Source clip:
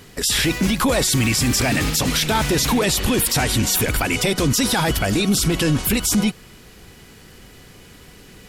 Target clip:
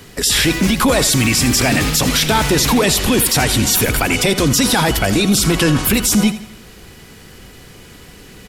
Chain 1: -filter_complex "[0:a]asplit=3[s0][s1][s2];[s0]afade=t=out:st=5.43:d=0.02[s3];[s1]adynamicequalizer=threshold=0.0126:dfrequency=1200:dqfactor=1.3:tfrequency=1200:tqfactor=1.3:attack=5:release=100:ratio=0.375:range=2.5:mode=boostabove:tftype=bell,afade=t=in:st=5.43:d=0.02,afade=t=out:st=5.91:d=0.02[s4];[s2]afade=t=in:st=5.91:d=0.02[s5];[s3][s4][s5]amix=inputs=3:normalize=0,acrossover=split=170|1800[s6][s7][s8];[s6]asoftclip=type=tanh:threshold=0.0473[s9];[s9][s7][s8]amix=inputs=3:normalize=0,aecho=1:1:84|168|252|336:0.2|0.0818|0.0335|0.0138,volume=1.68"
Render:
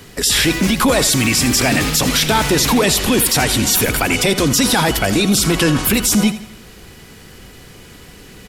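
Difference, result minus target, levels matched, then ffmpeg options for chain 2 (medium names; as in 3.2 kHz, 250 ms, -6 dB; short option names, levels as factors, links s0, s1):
saturation: distortion +7 dB
-filter_complex "[0:a]asplit=3[s0][s1][s2];[s0]afade=t=out:st=5.43:d=0.02[s3];[s1]adynamicequalizer=threshold=0.0126:dfrequency=1200:dqfactor=1.3:tfrequency=1200:tqfactor=1.3:attack=5:release=100:ratio=0.375:range=2.5:mode=boostabove:tftype=bell,afade=t=in:st=5.43:d=0.02,afade=t=out:st=5.91:d=0.02[s4];[s2]afade=t=in:st=5.91:d=0.02[s5];[s3][s4][s5]amix=inputs=3:normalize=0,acrossover=split=170|1800[s6][s7][s8];[s6]asoftclip=type=tanh:threshold=0.106[s9];[s9][s7][s8]amix=inputs=3:normalize=0,aecho=1:1:84|168|252|336:0.2|0.0818|0.0335|0.0138,volume=1.68"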